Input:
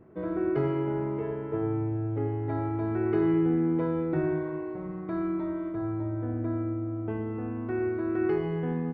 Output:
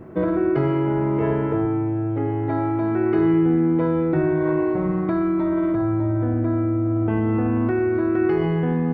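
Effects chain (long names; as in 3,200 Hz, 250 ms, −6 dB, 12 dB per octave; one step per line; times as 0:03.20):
notch filter 430 Hz, Q 12
in parallel at −2 dB: compressor whose output falls as the input rises −34 dBFS, ratio −0.5
0:01.65–0:03.19: on the sum: high-pass filter 130 Hz
level +6.5 dB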